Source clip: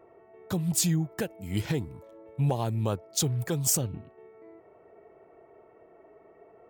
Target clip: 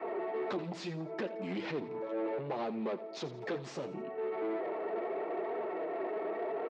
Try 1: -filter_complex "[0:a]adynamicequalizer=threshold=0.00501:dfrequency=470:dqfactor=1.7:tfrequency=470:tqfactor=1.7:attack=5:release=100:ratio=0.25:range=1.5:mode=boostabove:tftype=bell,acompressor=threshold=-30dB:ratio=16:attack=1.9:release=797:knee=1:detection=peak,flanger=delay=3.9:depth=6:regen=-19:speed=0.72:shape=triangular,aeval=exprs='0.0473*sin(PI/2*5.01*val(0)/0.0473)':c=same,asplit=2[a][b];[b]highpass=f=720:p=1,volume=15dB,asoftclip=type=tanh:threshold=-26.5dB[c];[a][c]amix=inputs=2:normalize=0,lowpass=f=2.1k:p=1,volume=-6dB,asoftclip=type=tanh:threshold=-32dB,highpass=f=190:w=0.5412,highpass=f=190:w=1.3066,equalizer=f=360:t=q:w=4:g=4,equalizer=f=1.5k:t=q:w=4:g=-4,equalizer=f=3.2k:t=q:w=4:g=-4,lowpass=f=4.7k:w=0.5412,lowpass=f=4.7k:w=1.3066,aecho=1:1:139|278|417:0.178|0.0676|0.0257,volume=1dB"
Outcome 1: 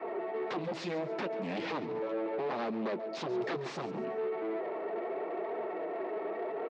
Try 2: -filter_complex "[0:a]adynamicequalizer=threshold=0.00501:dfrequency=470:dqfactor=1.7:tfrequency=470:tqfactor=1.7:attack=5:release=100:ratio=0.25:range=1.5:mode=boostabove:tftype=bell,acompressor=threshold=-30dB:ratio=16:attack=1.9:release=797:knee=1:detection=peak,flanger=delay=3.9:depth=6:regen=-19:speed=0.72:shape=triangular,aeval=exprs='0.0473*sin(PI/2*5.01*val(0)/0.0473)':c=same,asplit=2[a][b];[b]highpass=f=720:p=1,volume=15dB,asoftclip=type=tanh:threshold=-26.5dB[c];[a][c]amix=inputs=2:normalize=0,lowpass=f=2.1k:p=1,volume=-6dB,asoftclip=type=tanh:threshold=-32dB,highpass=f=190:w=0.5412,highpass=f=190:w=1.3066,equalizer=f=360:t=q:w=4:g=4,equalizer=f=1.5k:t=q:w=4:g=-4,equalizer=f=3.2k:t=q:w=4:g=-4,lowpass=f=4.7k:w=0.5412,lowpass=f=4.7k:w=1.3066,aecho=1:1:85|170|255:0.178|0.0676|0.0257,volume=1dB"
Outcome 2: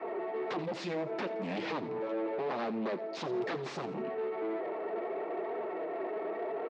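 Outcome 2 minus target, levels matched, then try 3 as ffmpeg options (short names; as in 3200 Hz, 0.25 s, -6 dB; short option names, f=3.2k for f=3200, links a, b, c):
compressor: peak gain reduction -7.5 dB
-filter_complex "[0:a]adynamicequalizer=threshold=0.00501:dfrequency=470:dqfactor=1.7:tfrequency=470:tqfactor=1.7:attack=5:release=100:ratio=0.25:range=1.5:mode=boostabove:tftype=bell,acompressor=threshold=-38dB:ratio=16:attack=1.9:release=797:knee=1:detection=peak,flanger=delay=3.9:depth=6:regen=-19:speed=0.72:shape=triangular,aeval=exprs='0.0473*sin(PI/2*5.01*val(0)/0.0473)':c=same,asplit=2[a][b];[b]highpass=f=720:p=1,volume=15dB,asoftclip=type=tanh:threshold=-26.5dB[c];[a][c]amix=inputs=2:normalize=0,lowpass=f=2.1k:p=1,volume=-6dB,asoftclip=type=tanh:threshold=-32dB,highpass=f=190:w=0.5412,highpass=f=190:w=1.3066,equalizer=f=360:t=q:w=4:g=4,equalizer=f=1.5k:t=q:w=4:g=-4,equalizer=f=3.2k:t=q:w=4:g=-4,lowpass=f=4.7k:w=0.5412,lowpass=f=4.7k:w=1.3066,aecho=1:1:85|170|255:0.178|0.0676|0.0257,volume=1dB"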